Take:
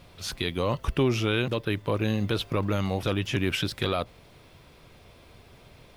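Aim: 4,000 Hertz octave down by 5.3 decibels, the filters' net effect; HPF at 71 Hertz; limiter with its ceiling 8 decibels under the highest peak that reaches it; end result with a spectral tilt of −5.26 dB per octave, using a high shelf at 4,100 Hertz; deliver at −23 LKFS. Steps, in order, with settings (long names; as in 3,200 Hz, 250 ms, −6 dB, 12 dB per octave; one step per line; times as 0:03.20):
high-pass filter 71 Hz
parametric band 4,000 Hz −4.5 dB
high-shelf EQ 4,100 Hz −4.5 dB
level +10 dB
brickwall limiter −11 dBFS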